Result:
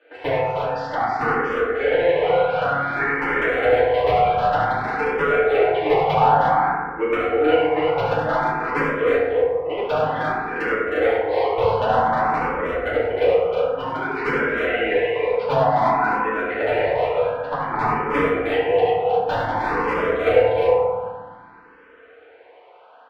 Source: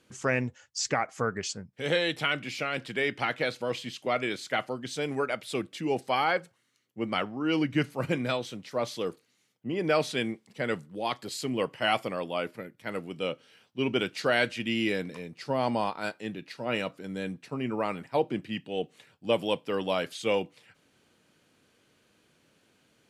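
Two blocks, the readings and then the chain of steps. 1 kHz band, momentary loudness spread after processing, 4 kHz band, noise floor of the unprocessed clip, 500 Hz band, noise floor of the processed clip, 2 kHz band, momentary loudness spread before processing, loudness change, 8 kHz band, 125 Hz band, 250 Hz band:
+14.5 dB, 6 LU, −0.5 dB, −70 dBFS, +12.5 dB, −48 dBFS, +9.0 dB, 10 LU, +10.5 dB, below −10 dB, +6.5 dB, +3.5 dB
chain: high-pass filter 530 Hz 24 dB per octave
spectral tilt −2 dB per octave
in parallel at +1 dB: downward compressor 10 to 1, threshold −43 dBFS, peak gain reduction 21.5 dB
on the sum: brickwall limiter −20.5 dBFS, peak gain reduction 7.5 dB
transient designer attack +8 dB, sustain −10 dB
mid-hump overdrive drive 20 dB, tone 1,500 Hz, clips at −12.5 dBFS
wrap-around overflow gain 15.5 dB
high-frequency loss of the air 400 metres
on a send: multi-tap delay 71/97/312/350 ms −4.5/−9.5/−5.5/−3.5 dB
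on the sum: feedback delay network reverb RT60 1.7 s, low-frequency decay 1.4×, high-frequency decay 0.3×, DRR −9 dB
frequency shifter mixed with the dry sound +0.54 Hz
level −2.5 dB

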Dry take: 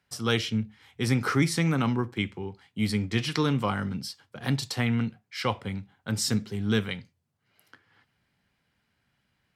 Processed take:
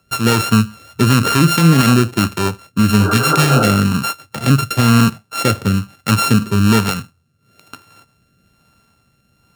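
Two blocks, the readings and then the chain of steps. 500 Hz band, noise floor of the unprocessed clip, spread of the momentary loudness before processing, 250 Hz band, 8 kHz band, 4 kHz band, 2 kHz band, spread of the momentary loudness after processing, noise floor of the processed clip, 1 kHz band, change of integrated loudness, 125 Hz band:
+11.5 dB, −75 dBFS, 11 LU, +13.5 dB, +14.5 dB, +12.0 dB, +12.5 dB, 9 LU, −61 dBFS, +16.5 dB, +14.0 dB, +14.5 dB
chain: samples sorted by size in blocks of 32 samples
healed spectral selection 0:03.03–0:03.64, 270–1,600 Hz both
rotating-speaker cabinet horn 5 Hz, later 1.1 Hz, at 0:01.33
noise that follows the level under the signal 32 dB
boost into a limiter +19.5 dB
level −1 dB

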